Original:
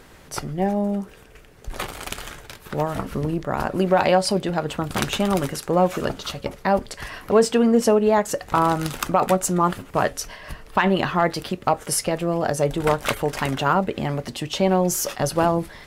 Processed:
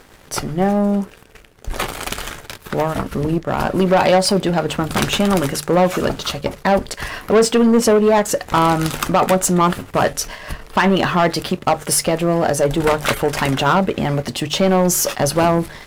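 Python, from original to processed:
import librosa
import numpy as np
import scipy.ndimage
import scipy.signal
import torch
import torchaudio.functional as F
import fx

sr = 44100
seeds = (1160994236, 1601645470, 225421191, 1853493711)

y = fx.leveller(x, sr, passes=2)
y = fx.transient(y, sr, attack_db=-3, sustain_db=-8, at=(2.82, 3.62))
y = fx.hum_notches(y, sr, base_hz=50, count=3)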